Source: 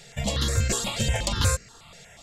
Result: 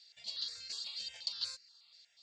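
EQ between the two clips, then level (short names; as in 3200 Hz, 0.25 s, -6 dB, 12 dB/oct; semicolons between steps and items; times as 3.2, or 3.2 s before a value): band-pass 4500 Hz, Q 10; air absorption 62 m; +2.5 dB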